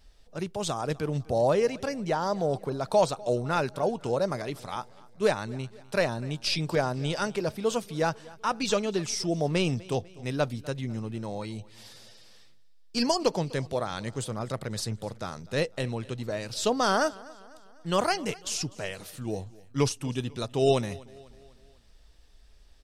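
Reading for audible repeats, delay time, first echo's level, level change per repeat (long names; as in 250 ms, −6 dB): 3, 249 ms, −22.0 dB, −6.0 dB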